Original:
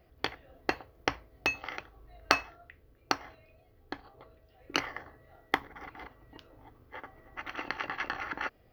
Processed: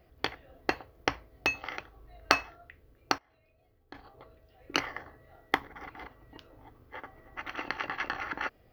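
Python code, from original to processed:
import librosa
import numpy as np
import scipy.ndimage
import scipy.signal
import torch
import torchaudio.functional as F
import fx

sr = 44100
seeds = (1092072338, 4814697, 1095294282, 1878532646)

y = fx.level_steps(x, sr, step_db=23, at=(3.18, 3.95))
y = F.gain(torch.from_numpy(y), 1.0).numpy()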